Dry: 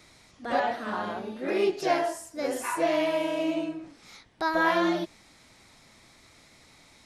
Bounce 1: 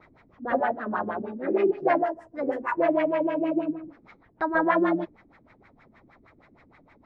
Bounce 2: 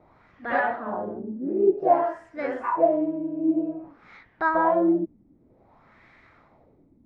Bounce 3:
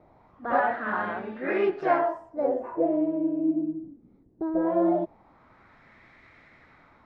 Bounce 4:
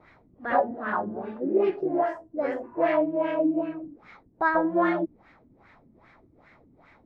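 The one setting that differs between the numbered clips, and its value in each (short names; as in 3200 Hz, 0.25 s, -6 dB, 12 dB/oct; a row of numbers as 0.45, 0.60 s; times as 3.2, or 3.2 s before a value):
LFO low-pass, rate: 6.4, 0.53, 0.2, 2.5 Hz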